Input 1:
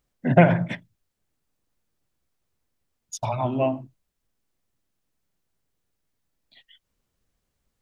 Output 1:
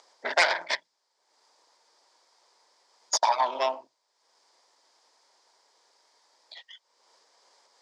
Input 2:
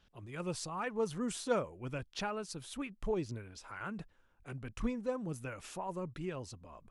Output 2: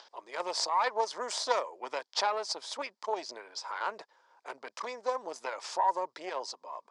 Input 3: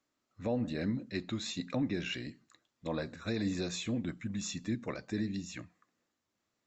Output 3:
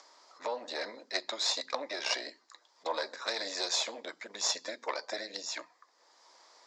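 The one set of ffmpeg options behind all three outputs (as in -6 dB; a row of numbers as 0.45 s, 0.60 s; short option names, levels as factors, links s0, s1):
-filter_complex "[0:a]equalizer=f=630:t=o:w=0.34:g=-9,acrossover=split=1500[s0][s1];[s0]acompressor=threshold=0.0126:ratio=5[s2];[s2][s1]amix=inputs=2:normalize=0,aeval=exprs='0.2*(cos(1*acos(clip(val(0)/0.2,-1,1)))-cos(1*PI/2))+0.0316*(cos(8*acos(clip(val(0)/0.2,-1,1)))-cos(8*PI/2))':c=same,acompressor=mode=upward:threshold=0.002:ratio=2.5,highpass=f=460:w=0.5412,highpass=f=460:w=1.3066,equalizer=f=630:t=q:w=4:g=9,equalizer=f=940:t=q:w=4:g=10,equalizer=f=1400:t=q:w=4:g=-3,equalizer=f=2700:t=q:w=4:g=-8,equalizer=f=4900:t=q:w=4:g=9,lowpass=f=7300:w=0.5412,lowpass=f=7300:w=1.3066,volume=2.51"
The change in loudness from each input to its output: -4.0 LU, +5.5 LU, +2.0 LU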